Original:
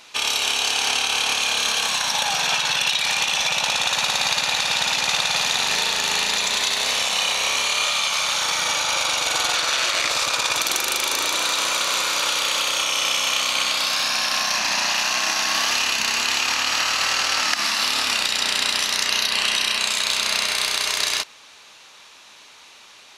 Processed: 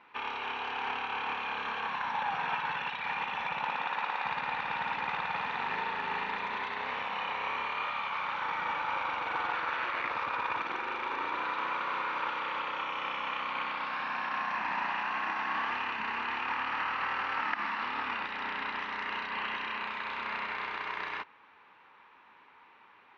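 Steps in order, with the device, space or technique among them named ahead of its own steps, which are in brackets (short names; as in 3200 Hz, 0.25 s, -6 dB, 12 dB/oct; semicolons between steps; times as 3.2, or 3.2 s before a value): 3.66–4.24 HPF 120 Hz -> 420 Hz 12 dB/oct; bass cabinet (speaker cabinet 76–2100 Hz, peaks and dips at 130 Hz -4 dB, 630 Hz -9 dB, 930 Hz +6 dB); bell 5700 Hz +4 dB 0.21 oct; gain -7 dB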